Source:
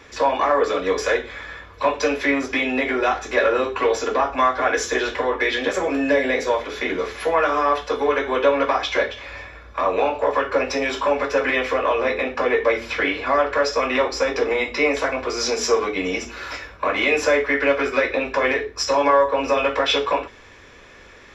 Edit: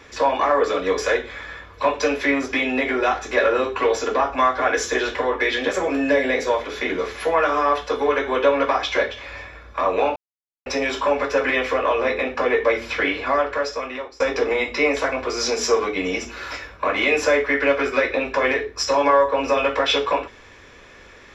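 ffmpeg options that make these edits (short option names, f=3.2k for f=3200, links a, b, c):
-filter_complex "[0:a]asplit=4[a][b][c][d];[a]atrim=end=10.16,asetpts=PTS-STARTPTS,afade=t=out:st=10.156:d=0.004:c=hsin[e];[b]atrim=start=10.16:end=10.66,asetpts=PTS-STARTPTS,volume=0[f];[c]atrim=start=10.66:end=14.2,asetpts=PTS-STARTPTS,afade=t=in:d=0.004:c=hsin,afade=t=out:st=2.56:d=0.98:silence=0.0794328[g];[d]atrim=start=14.2,asetpts=PTS-STARTPTS,afade=t=in:d=0.004:c=hsin:silence=0.0794328[h];[e][f][g][h]concat=n=4:v=0:a=1"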